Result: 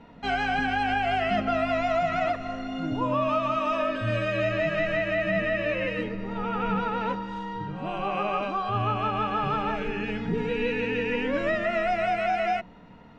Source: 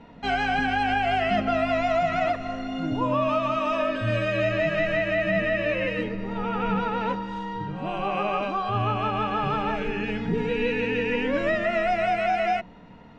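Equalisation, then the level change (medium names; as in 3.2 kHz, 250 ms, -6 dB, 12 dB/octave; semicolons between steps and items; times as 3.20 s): peaking EQ 1.3 kHz +2.5 dB 0.31 oct; -2.0 dB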